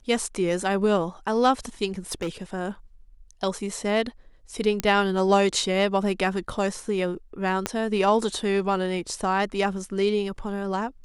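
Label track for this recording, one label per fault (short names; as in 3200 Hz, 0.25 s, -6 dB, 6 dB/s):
1.870000	2.290000	clipped -24 dBFS
4.800000	4.800000	pop -9 dBFS
7.660000	7.660000	pop -9 dBFS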